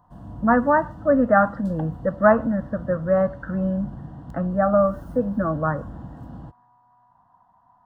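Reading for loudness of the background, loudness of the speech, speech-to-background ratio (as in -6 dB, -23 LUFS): -39.5 LUFS, -22.0 LUFS, 17.5 dB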